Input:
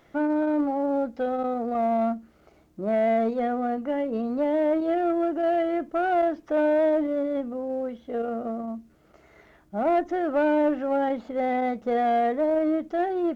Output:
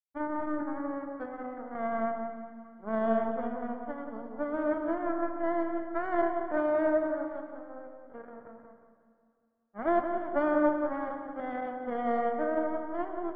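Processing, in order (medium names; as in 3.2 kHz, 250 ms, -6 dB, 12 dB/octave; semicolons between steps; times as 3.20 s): power-law waveshaper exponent 3; Savitzky-Golay filter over 41 samples; filtered feedback delay 180 ms, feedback 46%, low-pass 1.3 kHz, level -5 dB; plate-style reverb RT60 2.3 s, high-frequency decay 0.95×, DRR 7 dB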